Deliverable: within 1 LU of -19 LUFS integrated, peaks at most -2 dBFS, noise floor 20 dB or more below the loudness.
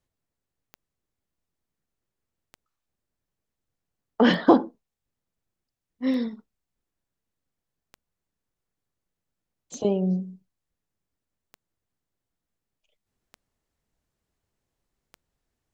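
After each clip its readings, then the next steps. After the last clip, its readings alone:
clicks 9; loudness -23.5 LUFS; peak -5.0 dBFS; loudness target -19.0 LUFS
-> de-click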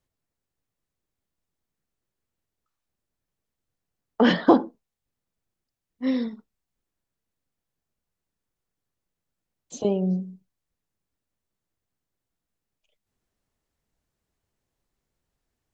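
clicks 0; loudness -23.5 LUFS; peak -5.0 dBFS; loudness target -19.0 LUFS
-> gain +4.5 dB; limiter -2 dBFS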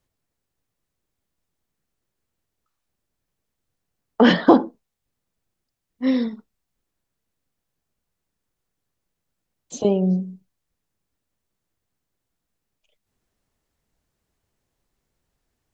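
loudness -19.5 LUFS; peak -2.0 dBFS; noise floor -81 dBFS

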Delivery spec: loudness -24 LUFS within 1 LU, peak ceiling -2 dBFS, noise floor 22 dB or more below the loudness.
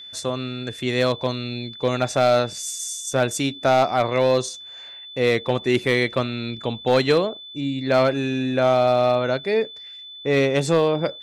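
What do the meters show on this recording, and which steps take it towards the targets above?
clipped 1.0%; flat tops at -10.0 dBFS; steady tone 3500 Hz; tone level -37 dBFS; loudness -21.5 LUFS; peak -10.0 dBFS; loudness target -24.0 LUFS
-> clip repair -10 dBFS; notch 3500 Hz, Q 30; gain -2.5 dB

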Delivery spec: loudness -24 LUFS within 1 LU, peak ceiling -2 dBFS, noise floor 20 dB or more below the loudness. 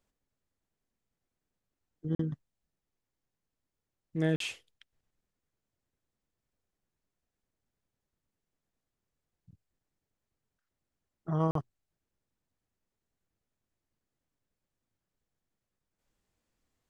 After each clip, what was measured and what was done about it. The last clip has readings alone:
dropouts 3; longest dropout 43 ms; loudness -34.0 LUFS; peak -16.5 dBFS; loudness target -24.0 LUFS
-> interpolate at 2.15/4.36/11.51, 43 ms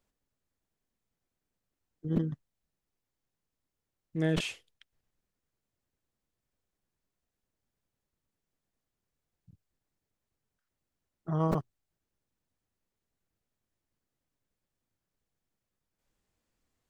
dropouts 0; loudness -33.0 LUFS; peak -14.0 dBFS; loudness target -24.0 LUFS
-> gain +9 dB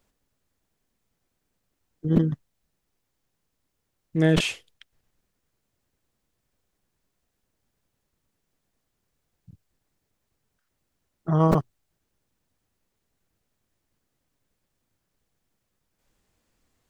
loudness -24.0 LUFS; peak -5.0 dBFS; noise floor -78 dBFS

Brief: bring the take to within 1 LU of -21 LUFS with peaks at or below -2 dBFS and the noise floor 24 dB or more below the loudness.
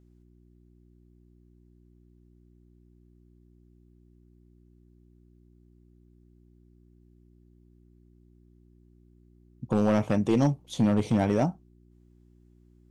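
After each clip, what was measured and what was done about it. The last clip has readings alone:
clipped 0.3%; flat tops at -16.0 dBFS; hum 60 Hz; harmonics up to 360 Hz; hum level -57 dBFS; loudness -26.0 LUFS; peak -16.0 dBFS; loudness target -21.0 LUFS
-> clip repair -16 dBFS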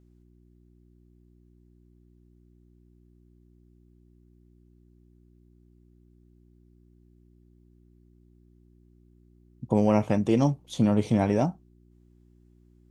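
clipped 0.0%; hum 60 Hz; harmonics up to 660 Hz; hum level -57 dBFS
-> de-hum 60 Hz, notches 11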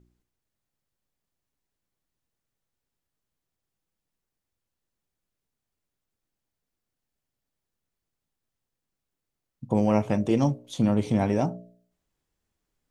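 hum none; loudness -25.0 LUFS; peak -8.5 dBFS; loudness target -21.0 LUFS
-> gain +4 dB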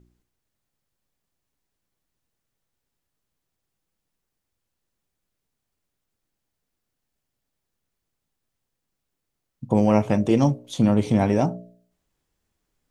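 loudness -21.0 LUFS; peak -4.5 dBFS; noise floor -81 dBFS

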